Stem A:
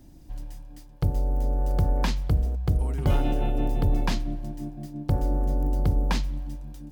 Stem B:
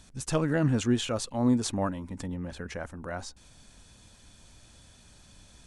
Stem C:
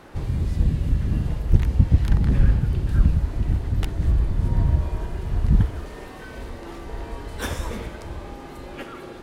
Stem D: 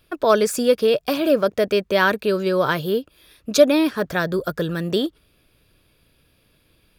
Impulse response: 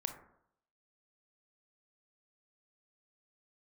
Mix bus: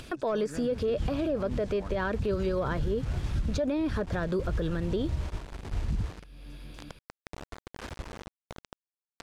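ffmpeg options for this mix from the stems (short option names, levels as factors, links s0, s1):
-filter_complex "[0:a]acompressor=threshold=0.0224:ratio=6,volume=0.141[s0];[1:a]deesser=0.95,volume=0.2[s1];[2:a]lowpass=1600,agate=range=0.316:threshold=0.0631:ratio=16:detection=peak,acrusher=bits=5:mix=0:aa=0.000001,adelay=400,volume=0.398[s2];[3:a]deesser=1,volume=0.75,asplit=2[s3][s4];[s4]apad=whole_len=424481[s5];[s2][s5]sidechaincompress=threshold=0.0708:ratio=8:attack=5.4:release=281[s6];[s0][s1][s6][s3]amix=inputs=4:normalize=0,lowpass=8300,acompressor=mode=upward:threshold=0.0251:ratio=2.5,alimiter=limit=0.0841:level=0:latency=1:release=74"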